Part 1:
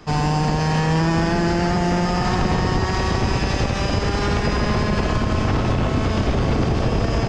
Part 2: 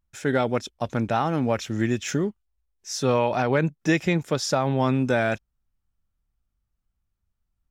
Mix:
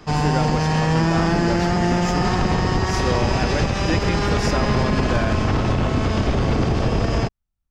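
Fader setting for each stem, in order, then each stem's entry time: 0.0, −3.5 decibels; 0.00, 0.00 seconds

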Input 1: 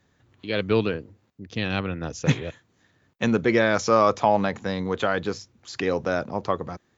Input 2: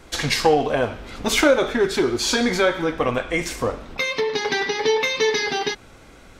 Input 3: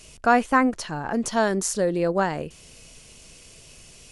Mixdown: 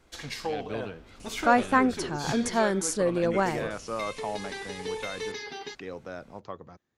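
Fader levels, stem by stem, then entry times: −14.5, −15.5, −3.0 decibels; 0.00, 0.00, 1.20 seconds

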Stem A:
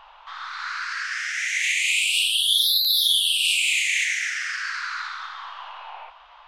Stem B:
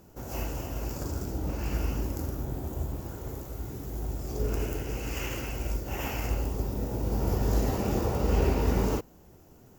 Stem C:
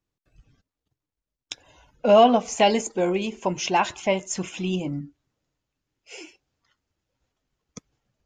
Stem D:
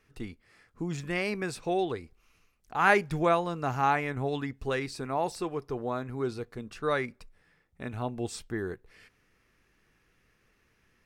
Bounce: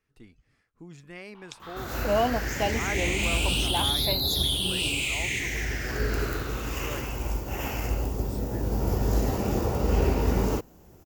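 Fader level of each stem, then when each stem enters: −7.5, +1.5, −9.5, −12.0 decibels; 1.35, 1.60, 0.00, 0.00 seconds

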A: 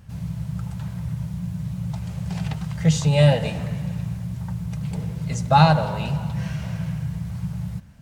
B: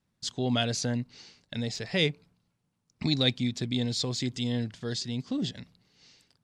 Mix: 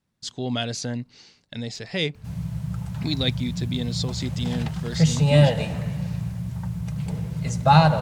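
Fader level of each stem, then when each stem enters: −0.5, +0.5 decibels; 2.15, 0.00 seconds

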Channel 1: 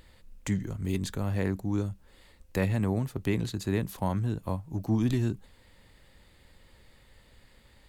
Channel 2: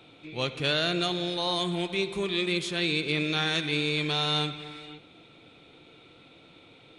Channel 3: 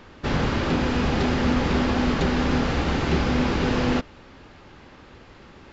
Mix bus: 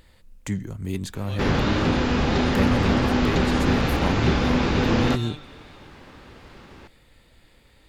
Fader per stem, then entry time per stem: +1.5, −10.5, +1.0 decibels; 0.00, 0.90, 1.15 seconds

